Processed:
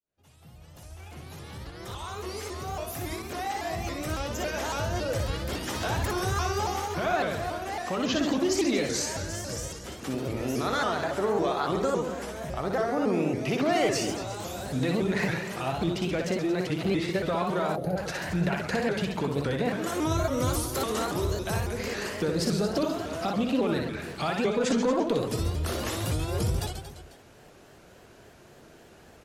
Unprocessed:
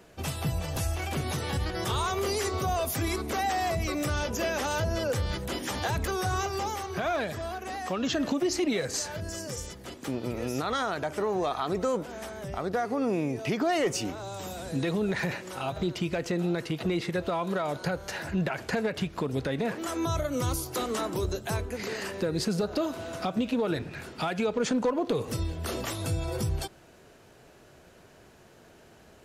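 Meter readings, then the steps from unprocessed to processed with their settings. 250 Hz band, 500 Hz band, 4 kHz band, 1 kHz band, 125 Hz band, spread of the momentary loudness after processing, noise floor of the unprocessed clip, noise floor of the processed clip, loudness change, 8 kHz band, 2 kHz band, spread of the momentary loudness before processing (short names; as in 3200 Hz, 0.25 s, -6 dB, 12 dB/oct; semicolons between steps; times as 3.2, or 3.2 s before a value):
+1.5 dB, +1.5 dB, +1.0 dB, +1.0 dB, +1.0 dB, 9 LU, -55 dBFS, -53 dBFS, +1.5 dB, +1.0 dB, +1.0 dB, 6 LU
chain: opening faded in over 6.73 s; reverse bouncing-ball echo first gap 60 ms, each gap 1.25×, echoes 5; spectral gain 17.76–17.97, 880–9700 Hz -15 dB; shaped vibrato saw up 3.6 Hz, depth 160 cents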